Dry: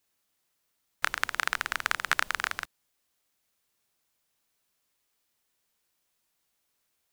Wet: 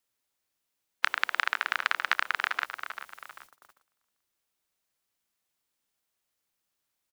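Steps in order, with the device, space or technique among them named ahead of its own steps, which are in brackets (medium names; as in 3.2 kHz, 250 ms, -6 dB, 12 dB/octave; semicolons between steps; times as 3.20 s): Bessel high-pass 230 Hz, order 8; frequency-shifting echo 393 ms, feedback 40%, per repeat -69 Hz, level -16 dB; baby monitor (band-pass 410–3300 Hz; compression, threshold -30 dBFS, peak gain reduction 10.5 dB; white noise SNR 22 dB; gate -59 dBFS, range -23 dB); trim +8.5 dB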